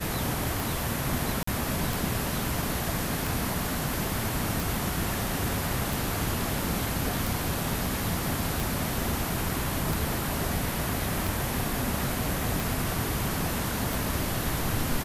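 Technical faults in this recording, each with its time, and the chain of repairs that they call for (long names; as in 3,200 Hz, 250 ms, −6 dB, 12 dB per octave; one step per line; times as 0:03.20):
scratch tick 45 rpm
0:01.43–0:01.47: drop-out 44 ms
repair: click removal
repair the gap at 0:01.43, 44 ms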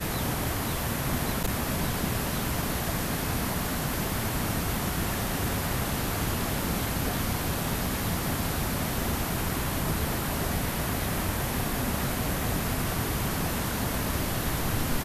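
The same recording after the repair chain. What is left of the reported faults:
none of them is left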